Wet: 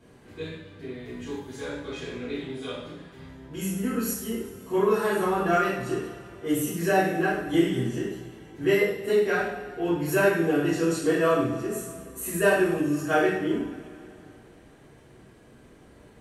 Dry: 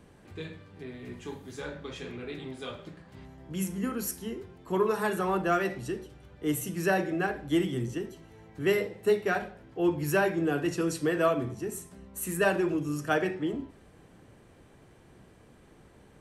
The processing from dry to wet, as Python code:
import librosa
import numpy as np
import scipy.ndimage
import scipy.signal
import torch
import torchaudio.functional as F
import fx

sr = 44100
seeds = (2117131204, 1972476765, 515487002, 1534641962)

y = fx.rev_double_slope(x, sr, seeds[0], early_s=0.63, late_s=3.0, knee_db=-18, drr_db=-9.5)
y = y * 10.0 ** (-6.0 / 20.0)